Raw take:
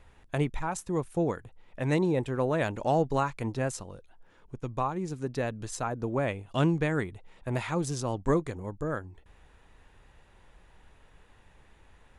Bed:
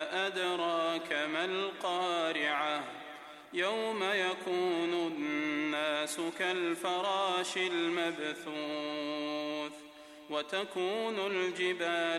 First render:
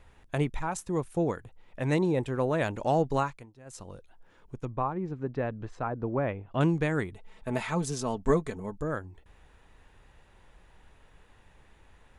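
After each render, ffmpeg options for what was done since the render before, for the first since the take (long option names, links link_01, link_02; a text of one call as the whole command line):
ffmpeg -i in.wav -filter_complex "[0:a]asettb=1/sr,asplit=3[link_01][link_02][link_03];[link_01]atrim=end=4.654[link_04];[link_02]atrim=start=4.65:end=6.61,asetpts=PTS-STARTPTS,afade=type=in:duration=0.004:curve=qsin,afade=type=out:start_time=1.956:duration=0.004:curve=qsin,lowpass=1900[link_05];[link_03]atrim=start=6.606[link_06];[link_04][link_05]acrossfade=duration=0.004:curve1=hsin:curve2=qsin[link_07];[link_07][link_06]acrossfade=duration=0.004:curve1=qsin:curve2=hsin,asettb=1/sr,asplit=3[link_08][link_09][link_10];[link_08]atrim=end=7.144[link_11];[link_09]atrim=start=7.14:end=8.82,asetpts=PTS-STARTPTS,afade=type=in:duration=0.004:curve=qsin,afade=type=out:start_time=1.676:duration=0.004:curve=qsin,aecho=1:1:4.6:0.54,atrim=end_sample=74088[link_12];[link_10]atrim=start=8.816[link_13];[link_11][link_12]acrossfade=duration=0.004:curve1=hsin:curve2=qsin[link_14];[link_14][link_13]acrossfade=duration=0.004:curve1=qsin:curve2=hsin,asplit=3[link_15][link_16][link_17];[link_15]atrim=end=3.46,asetpts=PTS-STARTPTS,afade=type=out:start_time=3.21:duration=0.25:silence=0.0794328[link_18];[link_16]atrim=start=3.46:end=3.65,asetpts=PTS-STARTPTS,volume=-22dB[link_19];[link_17]atrim=start=3.65,asetpts=PTS-STARTPTS,afade=type=in:duration=0.25:silence=0.0794328[link_20];[link_18][link_19][link_20]concat=n=3:v=0:a=1" out.wav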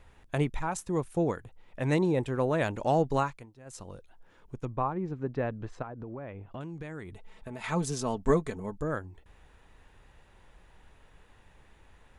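ffmpeg -i in.wav -filter_complex "[0:a]asettb=1/sr,asplit=3[link_01][link_02][link_03];[link_01]atrim=end=5.824[link_04];[link_02]atrim=start=5.82:end=7.64,asetpts=PTS-STARTPTS,afade=type=in:duration=0.004:curve=qsin,afade=type=out:start_time=1.816:duration=0.004:curve=qsin,acompressor=threshold=-37dB:ratio=6:attack=3.2:release=140:knee=1:detection=peak[link_05];[link_03]atrim=start=7.636[link_06];[link_04][link_05]acrossfade=duration=0.004:curve1=hsin:curve2=qsin[link_07];[link_07][link_06]acrossfade=duration=0.004:curve1=qsin:curve2=hsin" out.wav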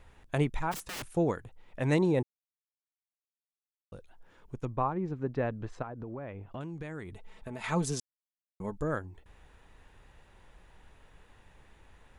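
ffmpeg -i in.wav -filter_complex "[0:a]asplit=3[link_01][link_02][link_03];[link_01]afade=type=out:start_time=0.71:duration=0.02[link_04];[link_02]aeval=exprs='(mod(50.1*val(0)+1,2)-1)/50.1':channel_layout=same,afade=type=in:start_time=0.71:duration=0.02,afade=type=out:start_time=1.15:duration=0.02[link_05];[link_03]afade=type=in:start_time=1.15:duration=0.02[link_06];[link_04][link_05][link_06]amix=inputs=3:normalize=0,asplit=5[link_07][link_08][link_09][link_10][link_11];[link_07]atrim=end=2.23,asetpts=PTS-STARTPTS,afade=type=out:start_time=2.226:duration=0.004:curve=hsin[link_12];[link_08]atrim=start=2.23:end=3.92,asetpts=PTS-STARTPTS,volume=0[link_13];[link_09]atrim=start=3.92:end=8,asetpts=PTS-STARTPTS,afade=type=in:duration=0.004:curve=hsin,afade=type=out:start_time=4.076:duration=0.004:curve=hsin[link_14];[link_10]atrim=start=8:end=8.6,asetpts=PTS-STARTPTS,volume=0[link_15];[link_11]atrim=start=8.6,asetpts=PTS-STARTPTS,afade=type=in:duration=0.004:curve=hsin[link_16];[link_12][link_13][link_14][link_15][link_16]concat=n=5:v=0:a=1" out.wav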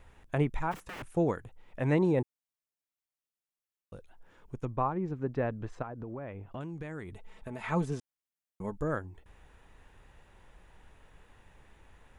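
ffmpeg -i in.wav -filter_complex "[0:a]acrossover=split=2800[link_01][link_02];[link_02]acompressor=threshold=-54dB:ratio=4:attack=1:release=60[link_03];[link_01][link_03]amix=inputs=2:normalize=0,equalizer=frequency=4300:width_type=o:width=0.66:gain=-3" out.wav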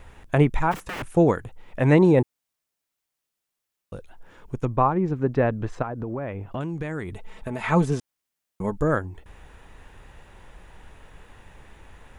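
ffmpeg -i in.wav -af "volume=10dB" out.wav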